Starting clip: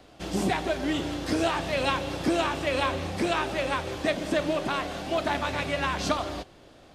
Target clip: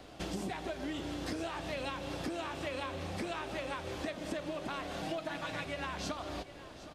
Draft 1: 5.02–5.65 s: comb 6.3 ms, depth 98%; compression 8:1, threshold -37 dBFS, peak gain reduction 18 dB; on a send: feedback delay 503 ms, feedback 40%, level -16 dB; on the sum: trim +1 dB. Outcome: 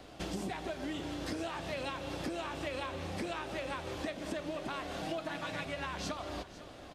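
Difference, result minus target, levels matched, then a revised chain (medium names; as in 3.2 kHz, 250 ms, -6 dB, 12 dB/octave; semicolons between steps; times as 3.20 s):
echo 263 ms early
5.02–5.65 s: comb 6.3 ms, depth 98%; compression 8:1, threshold -37 dBFS, peak gain reduction 18 dB; on a send: feedback delay 766 ms, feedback 40%, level -16 dB; on the sum: trim +1 dB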